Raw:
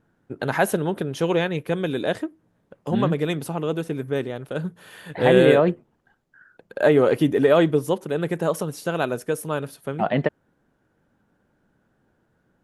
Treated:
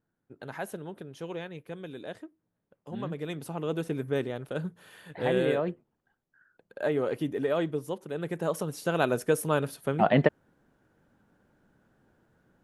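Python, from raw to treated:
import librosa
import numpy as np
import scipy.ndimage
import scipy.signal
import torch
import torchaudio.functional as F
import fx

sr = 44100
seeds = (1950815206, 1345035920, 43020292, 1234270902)

y = fx.gain(x, sr, db=fx.line((2.89, -16.0), (3.85, -4.0), (4.41, -4.0), (5.4, -11.5), (7.94, -11.5), (9.22, 0.0)))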